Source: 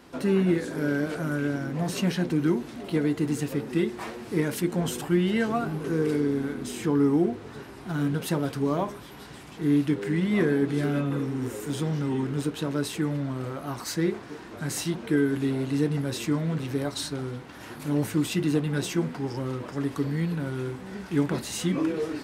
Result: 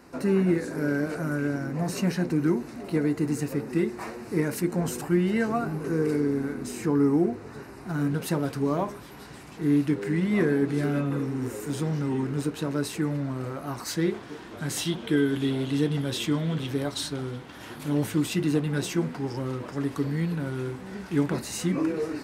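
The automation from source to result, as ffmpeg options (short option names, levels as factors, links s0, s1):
-af "asetnsamples=n=441:p=0,asendcmd='8.11 equalizer g -6.5;13.89 equalizer g 4;14.77 equalizer g 12;16.7 equalizer g 4.5;18.2 equalizer g -1.5;21.34 equalizer g -9.5',equalizer=f=3300:t=o:w=0.29:g=-14.5"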